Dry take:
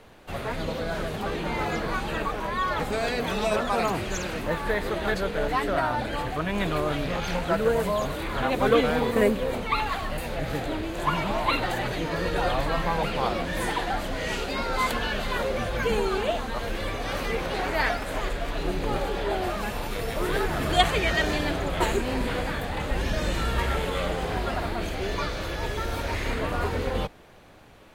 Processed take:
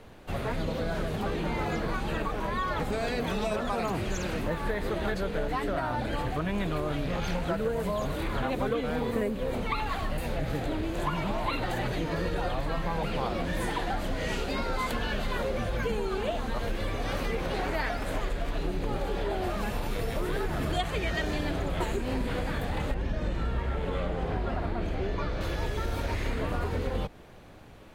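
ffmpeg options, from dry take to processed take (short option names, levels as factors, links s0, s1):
-filter_complex "[0:a]asettb=1/sr,asplit=3[s0][s1][s2];[s0]atrim=end=22.944[s3];[s1]atrim=start=22.94:end=25.41,asetpts=PTS-STARTPTS,afade=t=in:d=0.004:c=qsin,afade=t=out:st=2.466:d=0.004:c=qsin,lowpass=f=2000:p=1[s4];[s2]atrim=start=25.406[s5];[s3][s4]acrossfade=d=0.004:c1=hsin:c2=qsin[s6];[s6][s5]acrossfade=d=0.004:c1=qsin:c2=hsin,lowshelf=f=390:g=6,acompressor=threshold=0.0631:ratio=6,volume=0.794"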